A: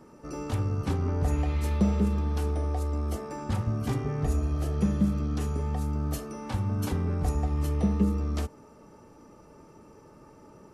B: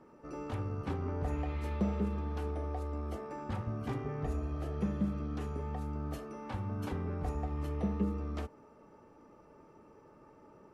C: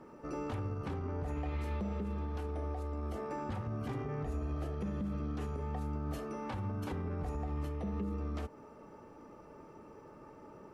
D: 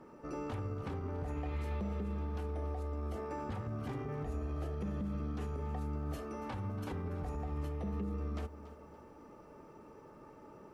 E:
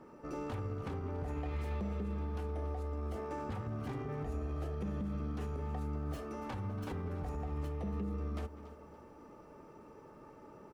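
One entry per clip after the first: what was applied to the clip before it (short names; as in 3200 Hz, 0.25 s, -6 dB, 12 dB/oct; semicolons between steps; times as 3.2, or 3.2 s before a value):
tone controls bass -5 dB, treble -13 dB; gain -4.5 dB
in parallel at -2.5 dB: compressor, threshold -43 dBFS, peak gain reduction 15.5 dB; on the sum: limiter -30 dBFS, peak gain reduction 9.5 dB
lo-fi delay 0.284 s, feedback 35%, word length 11-bit, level -15 dB; gain -1.5 dB
tracing distortion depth 0.056 ms; speakerphone echo 0.2 s, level -17 dB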